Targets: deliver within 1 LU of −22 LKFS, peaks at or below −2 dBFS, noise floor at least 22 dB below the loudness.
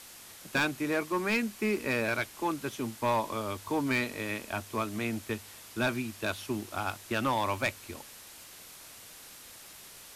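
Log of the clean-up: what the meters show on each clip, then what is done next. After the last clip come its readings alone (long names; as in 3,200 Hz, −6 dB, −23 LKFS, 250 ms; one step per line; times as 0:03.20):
share of clipped samples 0.7%; peaks flattened at −22.0 dBFS; background noise floor −50 dBFS; target noise floor −54 dBFS; integrated loudness −32.0 LKFS; sample peak −22.0 dBFS; target loudness −22.0 LKFS
→ clipped peaks rebuilt −22 dBFS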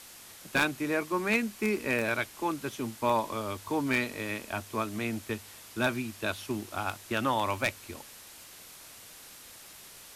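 share of clipped samples 0.0%; background noise floor −50 dBFS; target noise floor −53 dBFS
→ broadband denoise 6 dB, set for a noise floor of −50 dBFS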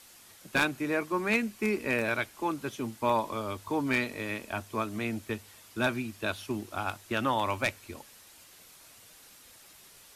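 background noise floor −55 dBFS; integrated loudness −31.0 LKFS; sample peak −13.0 dBFS; target loudness −22.0 LKFS
→ level +9 dB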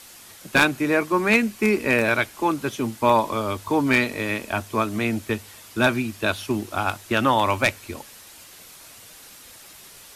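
integrated loudness −22.0 LKFS; sample peak −4.0 dBFS; background noise floor −46 dBFS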